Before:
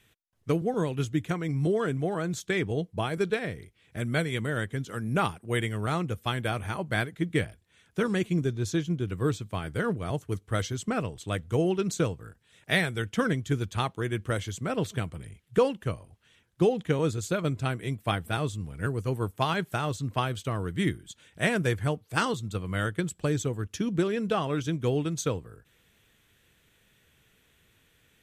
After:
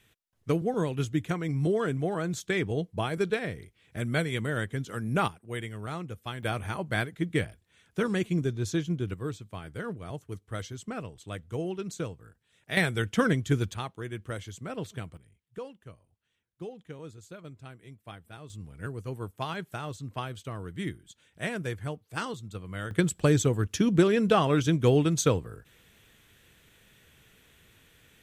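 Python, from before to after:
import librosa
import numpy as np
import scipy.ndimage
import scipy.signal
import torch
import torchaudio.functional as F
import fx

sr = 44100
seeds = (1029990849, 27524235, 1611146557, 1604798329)

y = fx.gain(x, sr, db=fx.steps((0.0, -0.5), (5.28, -7.5), (6.43, -1.0), (9.14, -7.5), (12.77, 2.0), (13.74, -7.0), (15.17, -17.0), (18.5, -7.0), (22.91, 5.0)))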